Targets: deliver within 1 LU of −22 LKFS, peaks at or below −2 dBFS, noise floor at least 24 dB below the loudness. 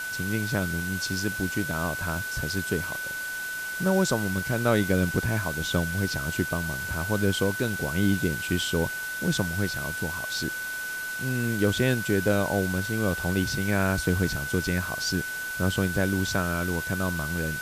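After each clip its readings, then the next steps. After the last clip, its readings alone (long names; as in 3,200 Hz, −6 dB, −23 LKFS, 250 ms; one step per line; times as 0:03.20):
interfering tone 1,500 Hz; level of the tone −31 dBFS; background noise floor −33 dBFS; target noise floor −51 dBFS; integrated loudness −27.0 LKFS; sample peak −10.0 dBFS; target loudness −22.0 LKFS
→ notch filter 1,500 Hz, Q 30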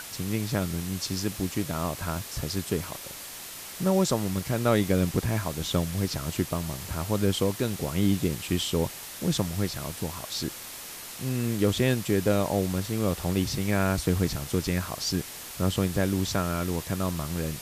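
interfering tone none found; background noise floor −41 dBFS; target noise floor −53 dBFS
→ noise reduction from a noise print 12 dB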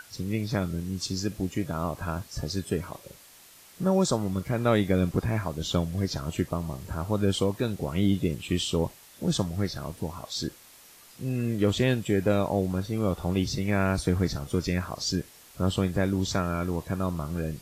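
background noise floor −53 dBFS; integrated loudness −28.5 LKFS; sample peak −11.0 dBFS; target loudness −22.0 LKFS
→ level +6.5 dB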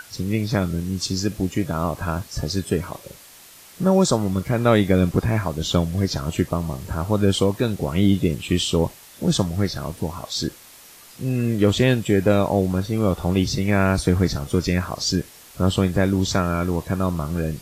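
integrated loudness −22.0 LKFS; sample peak −4.5 dBFS; background noise floor −46 dBFS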